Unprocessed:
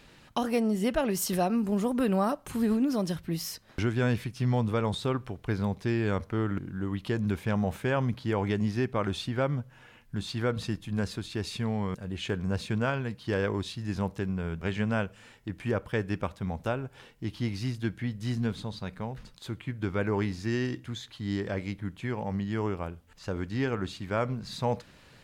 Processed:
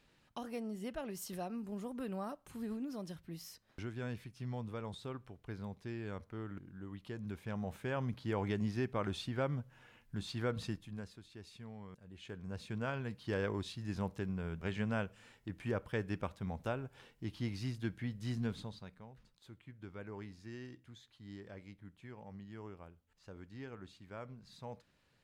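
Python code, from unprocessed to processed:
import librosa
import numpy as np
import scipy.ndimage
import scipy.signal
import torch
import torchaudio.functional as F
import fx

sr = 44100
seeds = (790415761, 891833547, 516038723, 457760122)

y = fx.gain(x, sr, db=fx.line((7.16, -15.0), (8.34, -7.5), (10.69, -7.5), (11.14, -19.5), (12.03, -19.5), (13.08, -7.5), (18.6, -7.5), (19.02, -18.5)))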